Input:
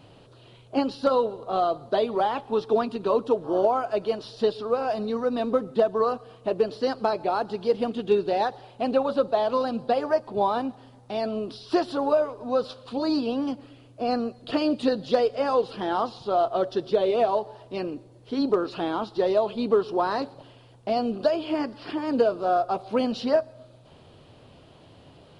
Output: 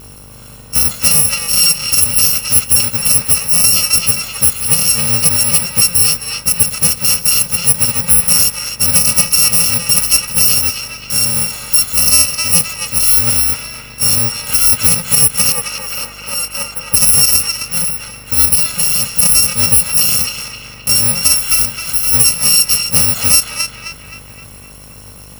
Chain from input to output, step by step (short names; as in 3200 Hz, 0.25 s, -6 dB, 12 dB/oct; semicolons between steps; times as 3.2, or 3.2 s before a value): FFT order left unsorted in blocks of 128 samples; 15.52–16.94 three-band isolator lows -14 dB, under 310 Hz, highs -12 dB, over 2200 Hz; buzz 50 Hz, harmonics 28, -55 dBFS -5 dB/oct; narrowing echo 0.262 s, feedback 58%, band-pass 2000 Hz, level -3 dB; maximiser +15 dB; gain -1 dB